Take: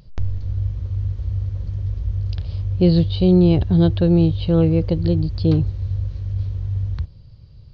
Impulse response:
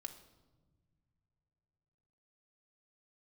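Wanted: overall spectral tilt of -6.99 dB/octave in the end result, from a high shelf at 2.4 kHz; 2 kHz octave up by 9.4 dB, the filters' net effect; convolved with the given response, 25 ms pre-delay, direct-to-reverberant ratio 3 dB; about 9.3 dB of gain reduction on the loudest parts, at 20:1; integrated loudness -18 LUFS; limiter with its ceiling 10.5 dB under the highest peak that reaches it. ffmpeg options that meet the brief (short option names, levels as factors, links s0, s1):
-filter_complex "[0:a]equalizer=f=2000:t=o:g=8.5,highshelf=f=2400:g=7.5,acompressor=threshold=0.112:ratio=20,alimiter=limit=0.1:level=0:latency=1,asplit=2[s0][s1];[1:a]atrim=start_sample=2205,adelay=25[s2];[s1][s2]afir=irnorm=-1:irlink=0,volume=1.12[s3];[s0][s3]amix=inputs=2:normalize=0,volume=3.16"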